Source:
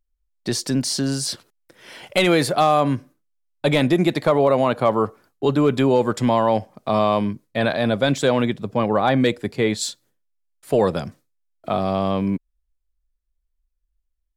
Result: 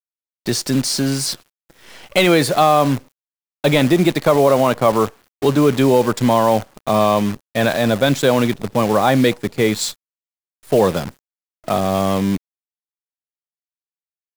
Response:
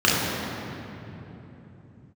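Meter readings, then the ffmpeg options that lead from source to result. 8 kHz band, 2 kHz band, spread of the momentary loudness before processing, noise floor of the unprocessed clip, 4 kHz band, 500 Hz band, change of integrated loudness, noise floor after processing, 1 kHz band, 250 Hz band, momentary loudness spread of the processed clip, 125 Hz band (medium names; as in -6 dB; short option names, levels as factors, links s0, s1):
+4.5 dB, +4.0 dB, 9 LU, -74 dBFS, +4.0 dB, +3.5 dB, +3.5 dB, under -85 dBFS, +3.5 dB, +3.5 dB, 9 LU, +3.5 dB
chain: -af "acrusher=bits=6:dc=4:mix=0:aa=0.000001,volume=1.5"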